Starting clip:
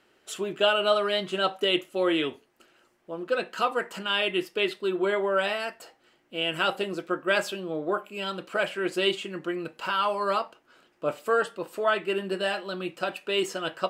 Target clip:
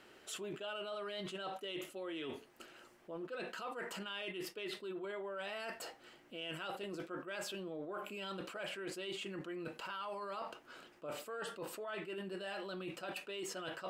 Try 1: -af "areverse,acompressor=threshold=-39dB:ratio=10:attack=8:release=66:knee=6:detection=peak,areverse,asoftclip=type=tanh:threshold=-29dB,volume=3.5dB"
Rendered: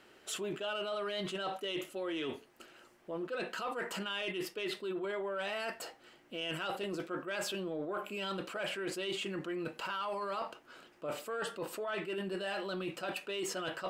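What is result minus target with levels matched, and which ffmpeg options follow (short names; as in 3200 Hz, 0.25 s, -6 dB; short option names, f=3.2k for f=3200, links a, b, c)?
compressor: peak gain reduction -6.5 dB
-af "areverse,acompressor=threshold=-46dB:ratio=10:attack=8:release=66:knee=6:detection=peak,areverse,asoftclip=type=tanh:threshold=-29dB,volume=3.5dB"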